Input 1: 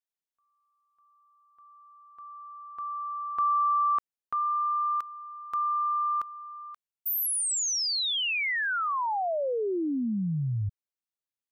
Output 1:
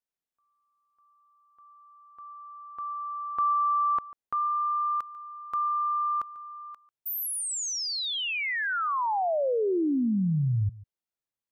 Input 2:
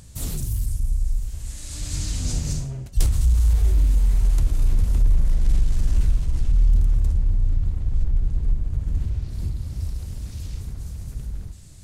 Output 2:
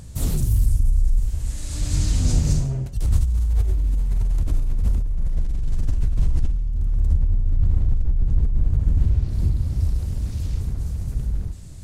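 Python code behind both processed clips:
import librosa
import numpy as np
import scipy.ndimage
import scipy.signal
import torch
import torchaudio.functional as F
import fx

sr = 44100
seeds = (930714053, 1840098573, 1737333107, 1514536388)

y = fx.tilt_shelf(x, sr, db=3.5, hz=1400.0)
y = fx.over_compress(y, sr, threshold_db=-17.0, ratio=-1.0)
y = y + 10.0 ** (-19.5 / 20.0) * np.pad(y, (int(144 * sr / 1000.0), 0))[:len(y)]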